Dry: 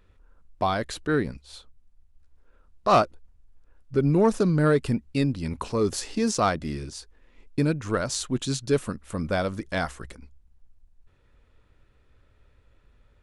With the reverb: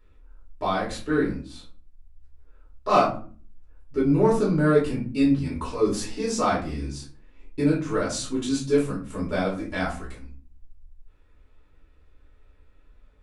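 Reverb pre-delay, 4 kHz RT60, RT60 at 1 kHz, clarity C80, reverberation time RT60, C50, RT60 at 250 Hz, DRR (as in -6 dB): 3 ms, 0.25 s, 0.40 s, 12.5 dB, 0.45 s, 6.5 dB, 0.70 s, -6.5 dB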